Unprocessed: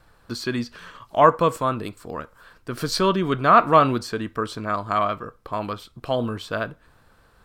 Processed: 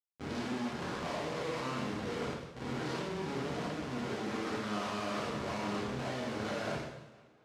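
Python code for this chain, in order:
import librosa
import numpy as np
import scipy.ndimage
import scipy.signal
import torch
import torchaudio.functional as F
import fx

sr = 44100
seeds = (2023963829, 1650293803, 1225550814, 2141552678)

y = fx.spec_blur(x, sr, span_ms=176.0)
y = fx.high_shelf(y, sr, hz=3200.0, db=-11.0)
y = fx.env_lowpass_down(y, sr, base_hz=820.0, full_db=-19.5)
y = fx.over_compress(y, sr, threshold_db=-30.0, ratio=-0.5)
y = fx.leveller(y, sr, passes=2)
y = fx.level_steps(y, sr, step_db=10)
y = fx.schmitt(y, sr, flips_db=-38.5)
y = fx.bandpass_edges(y, sr, low_hz=130.0, high_hz=5800.0)
y = fx.echo_tape(y, sr, ms=474, feedback_pct=64, wet_db=-23, lp_hz=4500.0, drive_db=27.0, wow_cents=27)
y = fx.rev_double_slope(y, sr, seeds[0], early_s=0.89, late_s=2.6, knee_db=-26, drr_db=-3.0)
y = y * 10.0 ** (-8.0 / 20.0)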